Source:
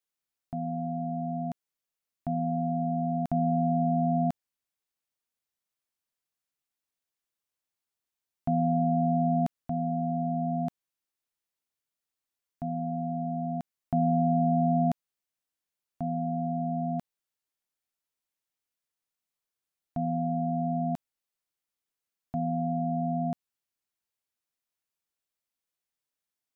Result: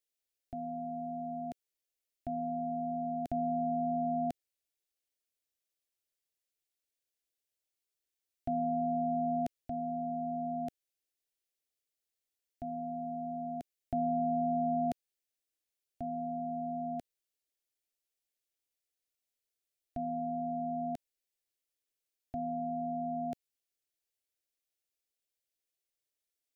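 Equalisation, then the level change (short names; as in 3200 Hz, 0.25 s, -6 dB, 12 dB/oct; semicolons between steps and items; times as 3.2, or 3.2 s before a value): fixed phaser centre 440 Hz, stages 4; 0.0 dB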